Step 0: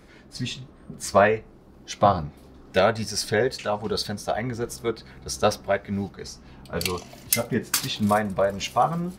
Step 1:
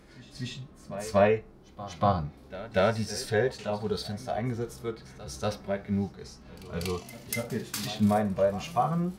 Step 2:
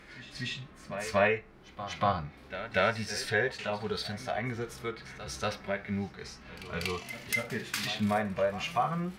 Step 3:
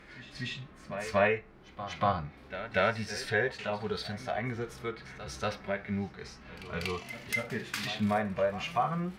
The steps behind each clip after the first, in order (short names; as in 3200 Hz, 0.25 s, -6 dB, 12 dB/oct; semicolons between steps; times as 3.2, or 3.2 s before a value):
harmonic-percussive split percussive -13 dB; pre-echo 0.239 s -16 dB
bell 2100 Hz +13 dB 1.9 oct; in parallel at +0.5 dB: compressor, threshold -32 dBFS, peak gain reduction 18 dB; on the sum: gain -8.5 dB
high shelf 4400 Hz -6 dB